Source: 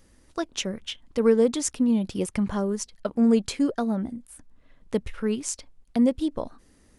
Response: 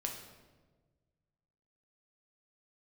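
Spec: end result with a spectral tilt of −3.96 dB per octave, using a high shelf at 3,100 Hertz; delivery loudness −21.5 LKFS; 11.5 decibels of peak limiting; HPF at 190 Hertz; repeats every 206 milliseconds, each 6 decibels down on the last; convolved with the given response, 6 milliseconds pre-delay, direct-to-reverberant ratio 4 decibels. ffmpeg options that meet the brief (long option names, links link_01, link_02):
-filter_complex "[0:a]highpass=190,highshelf=frequency=3100:gain=7,alimiter=limit=-18dB:level=0:latency=1,aecho=1:1:206|412|618|824|1030|1236:0.501|0.251|0.125|0.0626|0.0313|0.0157,asplit=2[link_01][link_02];[1:a]atrim=start_sample=2205,adelay=6[link_03];[link_02][link_03]afir=irnorm=-1:irlink=0,volume=-4.5dB[link_04];[link_01][link_04]amix=inputs=2:normalize=0,volume=6dB"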